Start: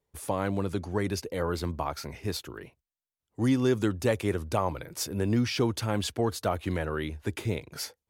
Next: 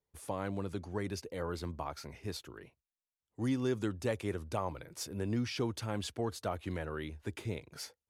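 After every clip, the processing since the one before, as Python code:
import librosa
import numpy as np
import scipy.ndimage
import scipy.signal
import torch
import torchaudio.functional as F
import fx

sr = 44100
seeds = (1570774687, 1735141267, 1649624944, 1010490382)

y = scipy.signal.sosfilt(scipy.signal.butter(2, 12000.0, 'lowpass', fs=sr, output='sos'), x)
y = y * librosa.db_to_amplitude(-8.0)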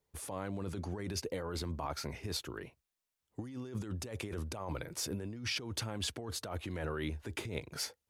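y = fx.over_compress(x, sr, threshold_db=-41.0, ratio=-1.0)
y = y * librosa.db_to_amplitude(2.0)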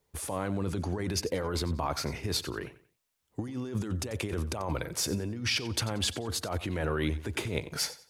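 y = fx.echo_feedback(x, sr, ms=91, feedback_pct=30, wet_db=-16)
y = y * librosa.db_to_amplitude(7.0)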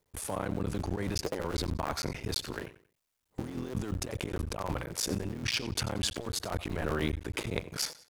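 y = fx.cycle_switch(x, sr, every=3, mode='muted')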